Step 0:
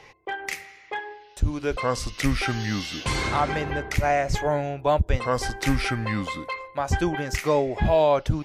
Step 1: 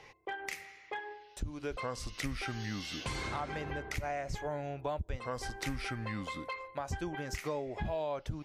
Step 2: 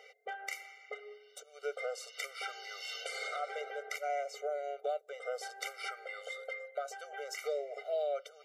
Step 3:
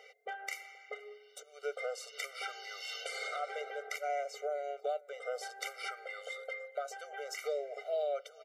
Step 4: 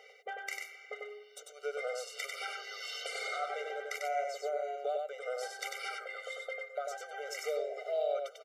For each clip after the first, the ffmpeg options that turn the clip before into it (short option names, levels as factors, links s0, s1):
-af "acompressor=threshold=0.0316:ratio=3,volume=0.501"
-af "afftfilt=real='re*eq(mod(floor(b*sr/1024/390),2),1)':imag='im*eq(mod(floor(b*sr/1024/390),2),1)':win_size=1024:overlap=0.75,volume=1.33"
-filter_complex "[0:a]asplit=2[s0][s1];[s1]adelay=478.1,volume=0.0794,highshelf=f=4000:g=-10.8[s2];[s0][s2]amix=inputs=2:normalize=0"
-af "aecho=1:1:96:0.668"